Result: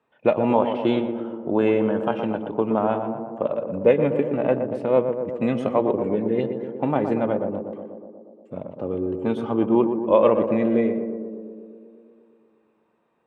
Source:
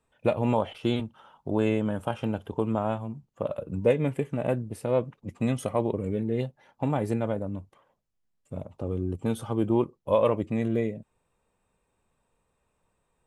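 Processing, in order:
band-pass filter 210–2,700 Hz
on a send: tape delay 120 ms, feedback 83%, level −5.5 dB, low-pass 1,100 Hz
on the sum: level +6 dB

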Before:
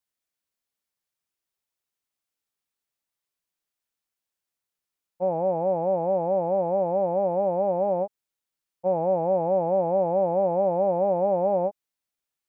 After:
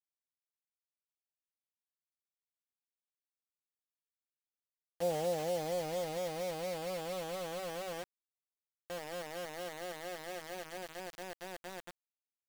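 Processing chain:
source passing by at 0:03.85, 23 m/s, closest 5.5 metres
bit-depth reduction 8 bits, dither none
level +5.5 dB

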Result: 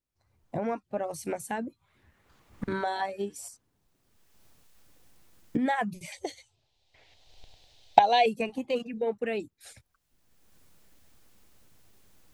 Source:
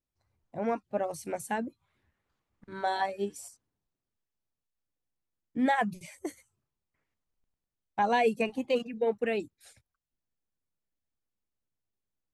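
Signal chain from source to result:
camcorder AGC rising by 25 dB per second
0:06.12–0:08.26: drawn EQ curve 120 Hz 0 dB, 180 Hz −13 dB, 760 Hz +8 dB, 1,200 Hz −9 dB, 3,800 Hz +15 dB, 11,000 Hz −11 dB
level −1.5 dB

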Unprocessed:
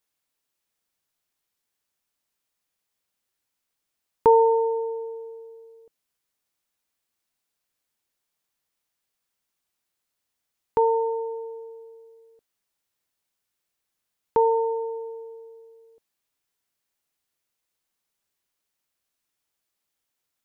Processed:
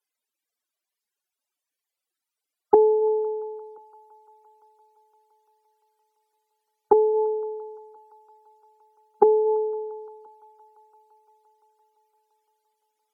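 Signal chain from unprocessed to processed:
high-pass filter 210 Hz 24 dB per octave
mains-hum notches 60/120/180/240/300 Hz
spectral peaks only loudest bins 64
in parallel at 0 dB: speech leveller within 4 dB 2 s
on the sum: speed change −5%
on a send: delay with a high-pass on its return 281 ms, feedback 82%, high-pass 1,500 Hz, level −14 dB
on the sum: phase-vocoder stretch with locked phases 0.61×
treble cut that deepens with the level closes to 390 Hz, closed at −12.5 dBFS

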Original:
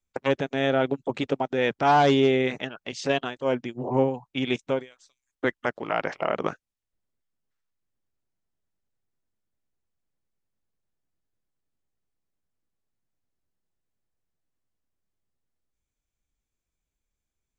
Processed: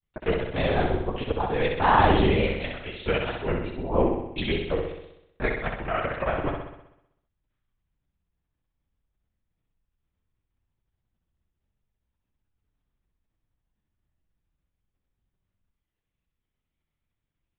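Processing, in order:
granular cloud, spray 22 ms, pitch spread up and down by 3 semitones
linear-prediction vocoder at 8 kHz whisper
flutter between parallel walls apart 10.9 metres, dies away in 0.81 s

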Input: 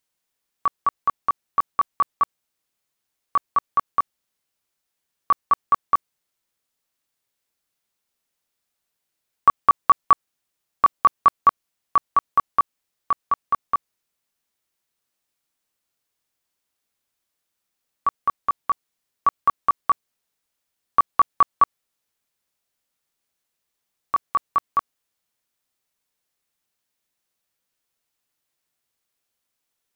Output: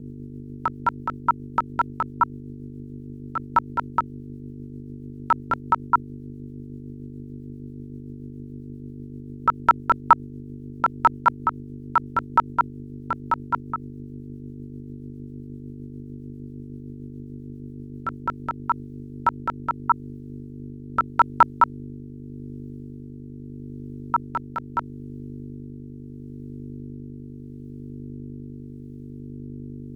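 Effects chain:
mains hum 50 Hz, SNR 11 dB
ring modulation 190 Hz
rotating-speaker cabinet horn 7.5 Hz, later 0.8 Hz, at 0:17.80
level +5 dB

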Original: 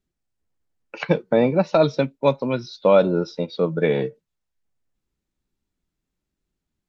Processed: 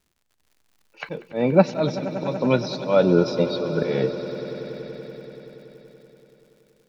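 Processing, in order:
volume swells 269 ms
surface crackle 120 per second −54 dBFS
echo that builds up and dies away 95 ms, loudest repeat 5, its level −16.5 dB
level +4.5 dB

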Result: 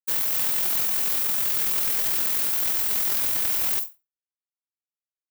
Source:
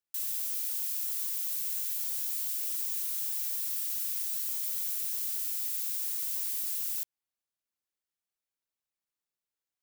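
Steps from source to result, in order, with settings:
RIAA equalisation recording
dead-zone distortion −27 dBFS
convolution reverb RT60 0.50 s, pre-delay 36 ms, DRR 7.5 dB
brickwall limiter −9 dBFS, peak gain reduction 7.5 dB
time stretch by overlap-add 0.54×, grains 47 ms
slew-rate limiting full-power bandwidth 1,300 Hz

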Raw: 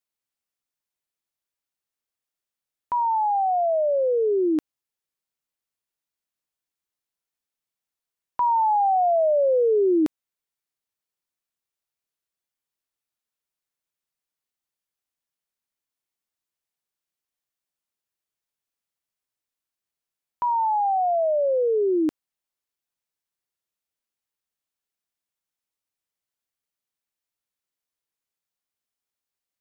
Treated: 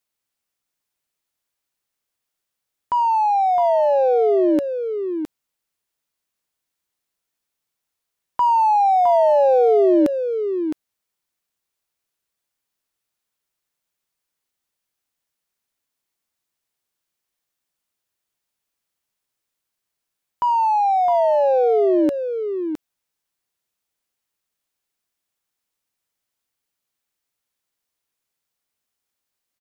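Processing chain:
in parallel at −8 dB: soft clipping −32.5 dBFS, distortion −9 dB
on the sum: single-tap delay 662 ms −7.5 dB
level +3.5 dB

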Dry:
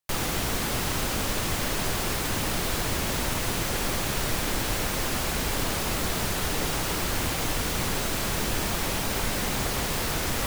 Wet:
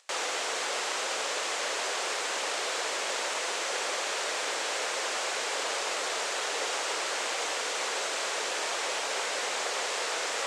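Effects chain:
elliptic band-pass filter 470–7,800 Hz, stop band 80 dB
upward compression, threshold −44 dBFS

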